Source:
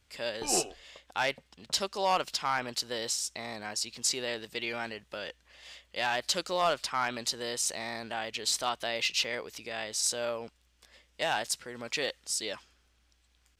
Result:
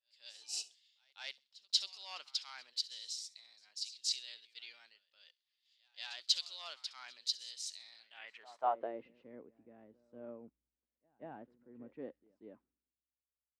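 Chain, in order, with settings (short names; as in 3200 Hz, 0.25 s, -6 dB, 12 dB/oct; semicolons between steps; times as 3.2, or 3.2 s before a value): on a send: thin delay 67 ms, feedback 33%, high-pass 4400 Hz, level -15.5 dB; on the sum: band-pass sweep 4100 Hz -> 260 Hz, 8.05–9.04; pre-echo 0.186 s -14.5 dB; three-band expander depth 100%; gain -6 dB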